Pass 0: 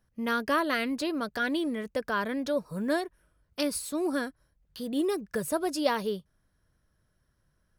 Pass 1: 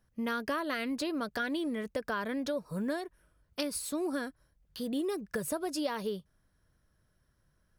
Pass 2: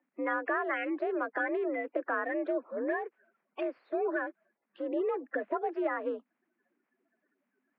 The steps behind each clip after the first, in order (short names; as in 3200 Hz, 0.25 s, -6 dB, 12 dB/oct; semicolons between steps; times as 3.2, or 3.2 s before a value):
compressor, threshold -30 dBFS, peak gain reduction 10 dB
bin magnitudes rounded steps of 30 dB; mistuned SSB +56 Hz 240–2300 Hz; gain +3 dB